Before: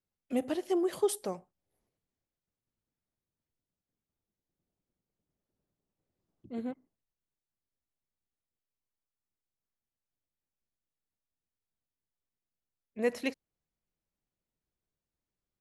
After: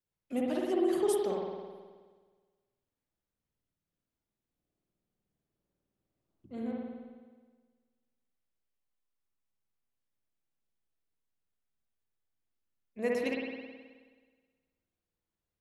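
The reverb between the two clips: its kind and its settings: spring tank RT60 1.5 s, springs 53 ms, chirp 40 ms, DRR -3 dB; trim -3.5 dB

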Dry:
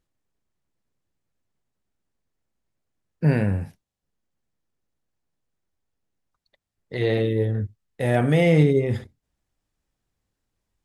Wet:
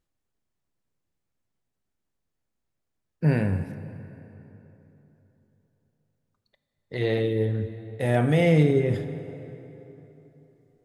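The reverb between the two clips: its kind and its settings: plate-style reverb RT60 3.6 s, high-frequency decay 0.65×, DRR 10 dB; trim -2.5 dB

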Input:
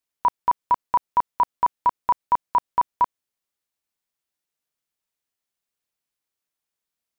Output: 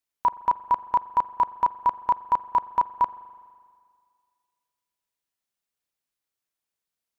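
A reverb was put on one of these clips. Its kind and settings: spring tank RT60 2 s, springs 41 ms, chirp 45 ms, DRR 16.5 dB; trim -2 dB

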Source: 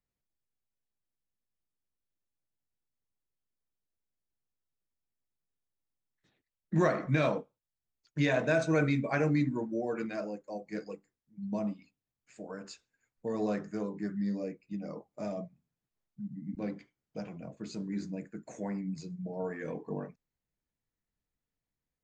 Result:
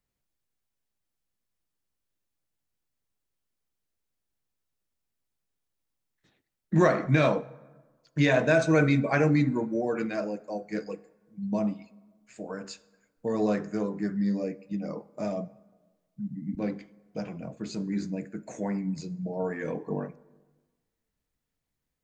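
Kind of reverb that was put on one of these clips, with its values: plate-style reverb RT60 1.4 s, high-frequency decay 0.55×, DRR 19 dB; trim +5.5 dB

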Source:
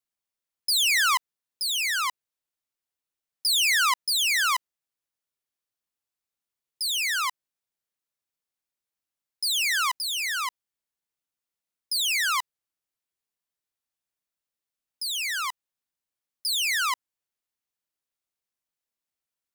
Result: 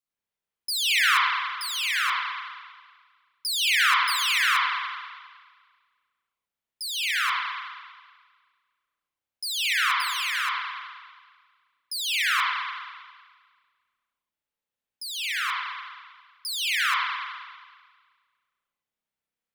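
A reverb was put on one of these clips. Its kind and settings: spring tank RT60 1.6 s, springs 31/53 ms, chirp 50 ms, DRR -7 dB; trim -5 dB

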